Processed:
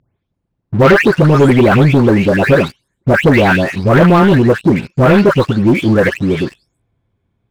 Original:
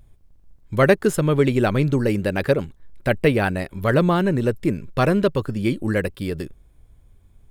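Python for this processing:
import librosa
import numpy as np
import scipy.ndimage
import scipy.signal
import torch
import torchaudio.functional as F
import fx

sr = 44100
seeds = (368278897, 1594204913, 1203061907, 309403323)

y = fx.spec_delay(x, sr, highs='late', ms=347)
y = fx.bandpass_edges(y, sr, low_hz=100.0, high_hz=3400.0)
y = fx.leveller(y, sr, passes=3)
y = y * librosa.db_to_amplitude(3.0)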